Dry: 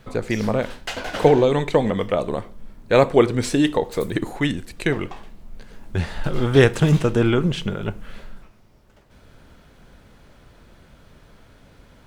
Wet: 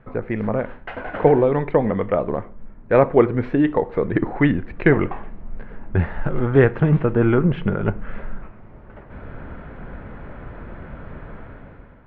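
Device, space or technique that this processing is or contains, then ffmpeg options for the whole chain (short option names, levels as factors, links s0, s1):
action camera in a waterproof case: -af "lowpass=f=2000:w=0.5412,lowpass=f=2000:w=1.3066,dynaudnorm=f=210:g=7:m=5.62,volume=0.891" -ar 48000 -c:a aac -b:a 96k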